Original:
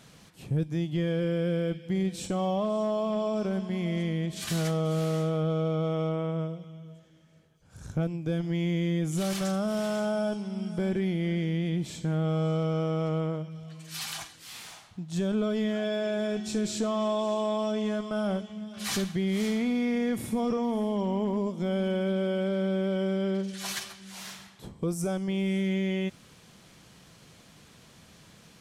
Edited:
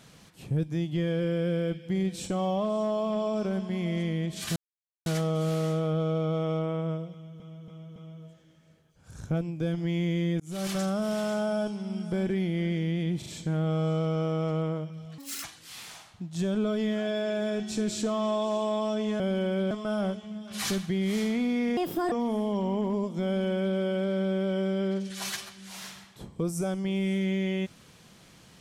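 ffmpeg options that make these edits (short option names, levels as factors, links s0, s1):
-filter_complex "[0:a]asplit=14[s0][s1][s2][s3][s4][s5][s6][s7][s8][s9][s10][s11][s12][s13];[s0]atrim=end=4.56,asetpts=PTS-STARTPTS,afade=t=out:st=4.556:d=0.004:c=hsin,apad=pad_dur=0.5[s14];[s1]atrim=start=4.56:end=6.902,asetpts=PTS-STARTPTS,afade=t=in:d=0.004:c=hsin[s15];[s2]atrim=start=6.618:end=6.902[s16];[s3]atrim=start=6.618:end=6.902[s17];[s4]atrim=start=6.618:end=9.06,asetpts=PTS-STARTPTS,afade=t=out:st=2.438:d=0.004:c=hsin[s18];[s5]atrim=start=9.06:end=11.882,asetpts=PTS-STARTPTS,afade=t=in:d=0.3[s19];[s6]atrim=start=11.838:end=11.882[s20];[s7]atrim=start=11.838:end=13.764[s21];[s8]atrim=start=13.76:end=14.21,asetpts=PTS-STARTPTS,asetrate=76734,aresample=44100,atrim=end_sample=11405,asetpts=PTS-STARTPTS[s22];[s9]atrim=start=14.206:end=17.972[s23];[s10]atrim=start=21.688:end=22.202[s24];[s11]atrim=start=17.968:end=20.034[s25];[s12]atrim=start=20.03:end=20.55,asetpts=PTS-STARTPTS,asetrate=65709,aresample=44100[s26];[s13]atrim=start=20.546[s27];[s14][s15]concat=n=2:v=0:a=1[s28];[s28][s16]acrossfade=d=0.004:c1=hsin:c2=hsin[s29];[s29][s17]acrossfade=d=0.004:c1=hsin:c2=hsin[s30];[s18][s19]concat=n=2:v=0:a=1[s31];[s30][s31]acrossfade=d=0.004:c1=hsin:c2=hsin[s32];[s32][s20]acrossfade=d=0.004:c1=hsin:c2=hsin[s33];[s33][s21]acrossfade=d=0.004:c1=hsin:c2=hsin[s34];[s34][s22]acrossfade=d=0.004:c1=hsin:c2=hsin[s35];[s35][s23]acrossfade=d=0.004:c1=hsin:c2=hsin[s36];[s36][s24]acrossfade=d=0.004:c1=hsin:c2=hsin[s37];[s37][s25]acrossfade=d=0.004:c1=hsin:c2=hsin[s38];[s38][s26]acrossfade=d=0.004:c1=hsin:c2=hsin[s39];[s39][s27]acrossfade=d=0.004:c1=hsin:c2=hsin"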